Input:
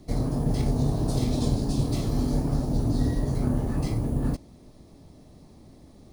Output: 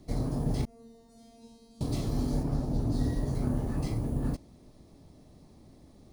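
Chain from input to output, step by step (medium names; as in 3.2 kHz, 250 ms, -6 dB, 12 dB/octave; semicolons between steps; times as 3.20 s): 0.65–1.81 s: feedback comb 230 Hz, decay 1.4 s, mix 100%; 2.43–2.92 s: treble shelf 4.6 kHz -6 dB; trim -4.5 dB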